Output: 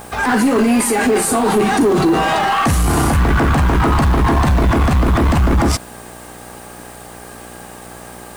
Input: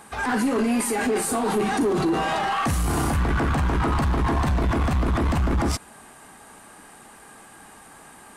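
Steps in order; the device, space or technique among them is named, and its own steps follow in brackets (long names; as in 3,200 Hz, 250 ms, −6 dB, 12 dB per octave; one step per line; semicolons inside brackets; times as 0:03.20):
video cassette with head-switching buzz (hum with harmonics 60 Hz, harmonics 14, −47 dBFS −1 dB per octave; white noise bed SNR 30 dB)
level +8.5 dB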